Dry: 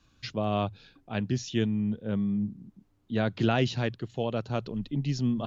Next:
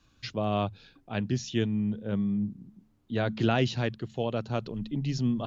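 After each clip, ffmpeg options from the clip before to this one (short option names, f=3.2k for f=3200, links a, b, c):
-af "bandreject=f=72.5:t=h:w=4,bandreject=f=145:t=h:w=4,bandreject=f=217.5:t=h:w=4"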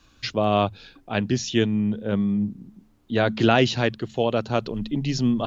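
-af "equalizer=f=130:t=o:w=1.5:g=-6,volume=9dB"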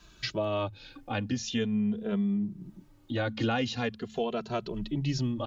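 -filter_complex "[0:a]acompressor=threshold=-36dB:ratio=2,asplit=2[a][b];[b]adelay=2.6,afreqshift=-0.44[c];[a][c]amix=inputs=2:normalize=1,volume=4.5dB"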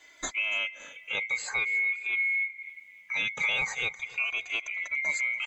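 -af "afftfilt=real='real(if(lt(b,920),b+92*(1-2*mod(floor(b/92),2)),b),0)':imag='imag(if(lt(b,920),b+92*(1-2*mod(floor(b/92),2)),b),0)':win_size=2048:overlap=0.75,aecho=1:1:285|570|855:0.1|0.046|0.0212"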